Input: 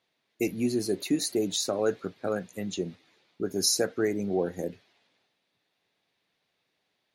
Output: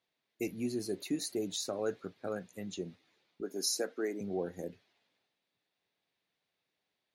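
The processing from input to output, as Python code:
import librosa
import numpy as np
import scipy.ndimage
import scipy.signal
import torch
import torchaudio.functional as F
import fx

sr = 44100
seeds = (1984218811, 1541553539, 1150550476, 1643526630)

y = fx.highpass(x, sr, hz=230.0, slope=24, at=(3.41, 4.21))
y = y * librosa.db_to_amplitude(-8.0)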